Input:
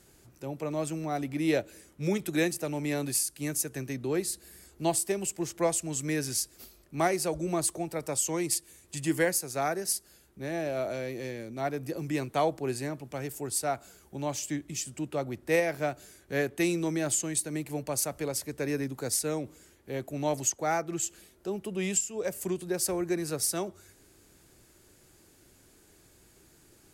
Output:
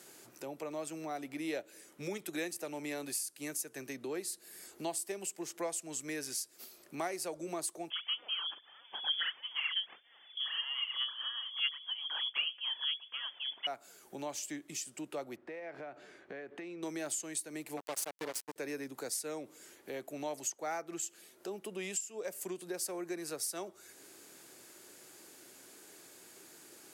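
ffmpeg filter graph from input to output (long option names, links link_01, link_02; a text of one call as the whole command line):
ffmpeg -i in.wav -filter_complex "[0:a]asettb=1/sr,asplit=3[link_01][link_02][link_03];[link_01]atrim=end=7.904[link_04];[link_02]atrim=start=7.9:end=13.67,asetpts=PTS-STARTPTS,afade=type=in:duration=0.004:curve=qsin,afade=type=out:start_time=5.766:duration=0.004:curve=qsin,aphaser=in_gain=1:out_gain=1:delay=4.4:decay=0.74:speed=1.6:type=sinusoidal,lowpass=frequency=3000:width_type=q:width=0.5098,lowpass=frequency=3000:width_type=q:width=0.6013,lowpass=frequency=3000:width_type=q:width=0.9,lowpass=frequency=3000:width_type=q:width=2.563,afreqshift=-3500[link_05];[link_03]atrim=start=13.666[link_06];[link_04][link_05]acrossfade=duration=0.004:curve1=hsin:curve2=qsin[link_07];[link_07][link_06]acrossfade=duration=0.004:curve1=qsin:curve2=hsin,asettb=1/sr,asplit=3[link_08][link_09][link_10];[link_08]atrim=end=15.364[link_11];[link_09]atrim=start=15.36:end=16.83,asetpts=PTS-STARTPTS,afade=type=in:duration=0.004:curve=qsin,afade=type=out:start_time=1.466:duration=0.004:curve=qsin,lowpass=2300,acompressor=threshold=-38dB:ratio=10:attack=3.2:release=140:knee=1:detection=peak[link_12];[link_10]atrim=start=16.826[link_13];[link_11][link_12]acrossfade=duration=0.004:curve1=hsin:curve2=qsin[link_14];[link_14][link_13]acrossfade=duration=0.004:curve1=qsin:curve2=hsin,asettb=1/sr,asplit=3[link_15][link_16][link_17];[link_15]atrim=end=17.774[link_18];[link_16]atrim=start=17.77:end=18.56,asetpts=PTS-STARTPTS,afade=type=in:duration=0.004:curve=qsin,afade=type=out:start_time=0.786:duration=0.004:curve=qsin,highpass=100,acrusher=bits=4:mix=0:aa=0.5[link_19];[link_17]atrim=start=18.556[link_20];[link_18][link_19]acrossfade=duration=0.004:curve1=hsin:curve2=qsin[link_21];[link_21][link_20]acrossfade=duration=0.004:curve1=qsin:curve2=hsin,highpass=260,lowshelf=frequency=400:gain=-4.5,acompressor=threshold=-53dB:ratio=2,volume=6dB" out.wav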